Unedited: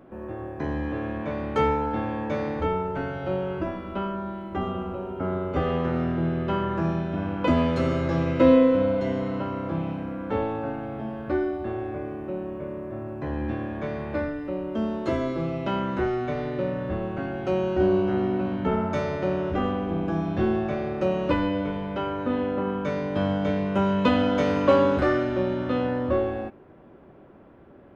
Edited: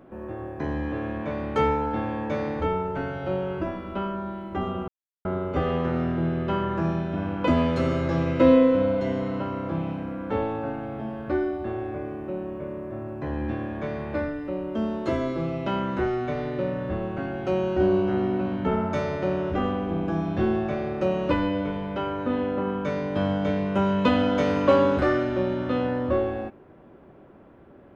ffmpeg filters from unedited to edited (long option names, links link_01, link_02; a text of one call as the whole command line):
ffmpeg -i in.wav -filter_complex "[0:a]asplit=3[link_01][link_02][link_03];[link_01]atrim=end=4.88,asetpts=PTS-STARTPTS,afade=type=out:start_time=4.876:duration=0.004:curve=hsin[link_04];[link_02]atrim=start=4.88:end=5.25,asetpts=PTS-STARTPTS,volume=0[link_05];[link_03]atrim=start=5.25,asetpts=PTS-STARTPTS,afade=type=in:duration=0.004:curve=hsin[link_06];[link_04][link_05][link_06]concat=n=3:v=0:a=1" out.wav